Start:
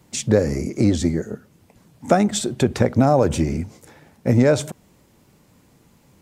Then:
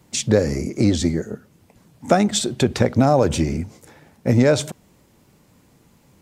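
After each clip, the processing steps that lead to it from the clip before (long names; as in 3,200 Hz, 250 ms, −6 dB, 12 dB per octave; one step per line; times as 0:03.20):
dynamic equaliser 4,000 Hz, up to +5 dB, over −40 dBFS, Q 0.84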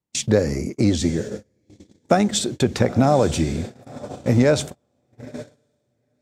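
feedback delay with all-pass diffusion 936 ms, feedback 41%, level −13 dB
noise gate −27 dBFS, range −31 dB
level −1 dB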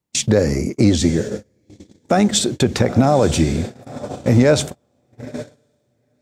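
brickwall limiter −9 dBFS, peak gain reduction 6.5 dB
level +5 dB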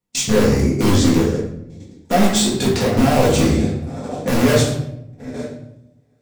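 in parallel at −5 dB: wrap-around overflow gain 10 dB
on the sum: convolution reverb RT60 0.80 s, pre-delay 4 ms, DRR −5.5 dB
level −8.5 dB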